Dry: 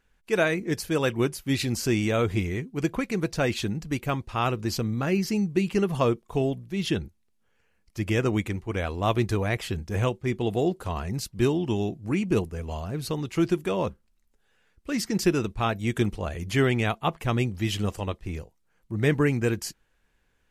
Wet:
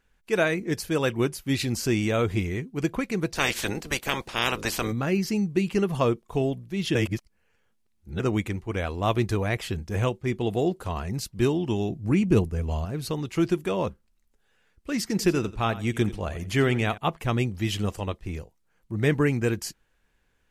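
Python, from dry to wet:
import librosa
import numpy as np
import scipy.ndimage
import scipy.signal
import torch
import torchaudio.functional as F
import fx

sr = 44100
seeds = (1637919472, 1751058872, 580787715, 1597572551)

y = fx.spec_clip(x, sr, under_db=24, at=(3.35, 4.91), fade=0.02)
y = fx.low_shelf(y, sr, hz=250.0, db=7.5, at=(11.9, 12.85))
y = fx.echo_feedback(y, sr, ms=87, feedback_pct=18, wet_db=-16, at=(15.01, 16.98))
y = fx.edit(y, sr, fx.reverse_span(start_s=6.95, length_s=1.25), tone=tone)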